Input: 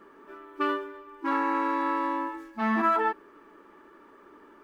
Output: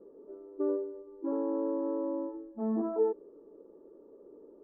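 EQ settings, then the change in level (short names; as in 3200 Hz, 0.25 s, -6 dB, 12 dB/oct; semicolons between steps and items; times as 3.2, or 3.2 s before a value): ladder low-pass 540 Hz, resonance 70%; +6.5 dB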